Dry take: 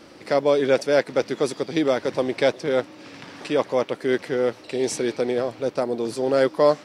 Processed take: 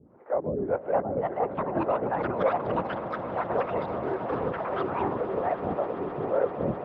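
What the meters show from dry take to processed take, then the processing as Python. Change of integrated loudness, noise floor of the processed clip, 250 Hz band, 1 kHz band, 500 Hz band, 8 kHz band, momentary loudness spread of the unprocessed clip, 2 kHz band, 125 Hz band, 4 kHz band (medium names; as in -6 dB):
-6.0 dB, -42 dBFS, -6.5 dB, +1.5 dB, -7.0 dB, under -40 dB, 7 LU, -8.5 dB, -0.5 dB, -19.0 dB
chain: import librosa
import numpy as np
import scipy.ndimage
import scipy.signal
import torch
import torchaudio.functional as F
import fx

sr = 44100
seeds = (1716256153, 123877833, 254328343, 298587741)

y = scipy.signal.sosfilt(scipy.signal.butter(4, 1100.0, 'lowpass', fs=sr, output='sos'), x)
y = fx.lpc_vocoder(y, sr, seeds[0], excitation='whisper', order=10)
y = fx.peak_eq(y, sr, hz=500.0, db=-3.0, octaves=1.8)
y = fx.harmonic_tremolo(y, sr, hz=1.8, depth_pct=100, crossover_hz=410.0)
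y = fx.echo_pitch(y, sr, ms=702, semitones=5, count=3, db_per_echo=-3.0)
y = scipy.signal.sosfilt(scipy.signal.butter(2, 140.0, 'highpass', fs=sr, output='sos'), y)
y = fx.echo_swell(y, sr, ms=130, loudest=8, wet_db=-17)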